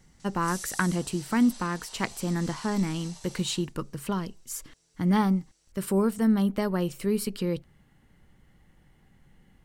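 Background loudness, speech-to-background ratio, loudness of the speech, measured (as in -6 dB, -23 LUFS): -43.0 LUFS, 14.5 dB, -28.5 LUFS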